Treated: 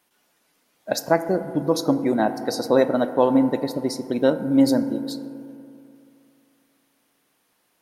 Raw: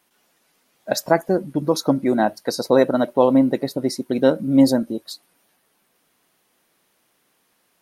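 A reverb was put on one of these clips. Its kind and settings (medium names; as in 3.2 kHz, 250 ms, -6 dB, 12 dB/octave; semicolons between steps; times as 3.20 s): FDN reverb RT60 2.6 s, high-frequency decay 0.25×, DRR 10 dB; trim -2.5 dB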